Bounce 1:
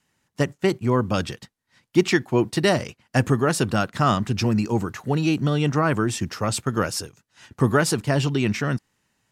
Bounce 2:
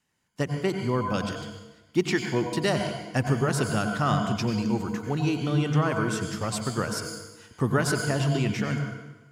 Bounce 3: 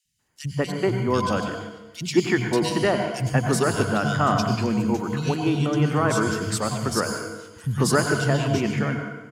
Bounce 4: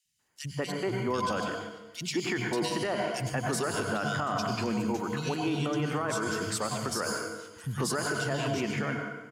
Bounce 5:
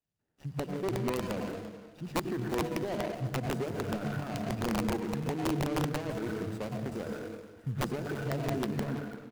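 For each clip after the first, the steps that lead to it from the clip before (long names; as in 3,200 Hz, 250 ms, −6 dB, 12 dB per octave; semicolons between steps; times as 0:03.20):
on a send at −4.5 dB: EQ curve with evenly spaced ripples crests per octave 1.8, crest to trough 13 dB + convolution reverb RT60 1.1 s, pre-delay 82 ms; on the sum: level −6 dB
three-band delay without the direct sound highs, lows, mids 50/190 ms, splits 170/2,800 Hz; level +5 dB
low-shelf EQ 210 Hz −9.5 dB; brickwall limiter −19 dBFS, peak gain reduction 10 dB; level −2 dB
running median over 41 samples; wrap-around overflow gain 24 dB; single-tap delay 340 ms −16.5 dB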